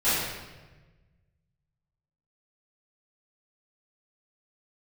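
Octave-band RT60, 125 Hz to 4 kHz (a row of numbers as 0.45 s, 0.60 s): 2.2 s, 1.6 s, 1.4 s, 1.1 s, 1.1 s, 0.95 s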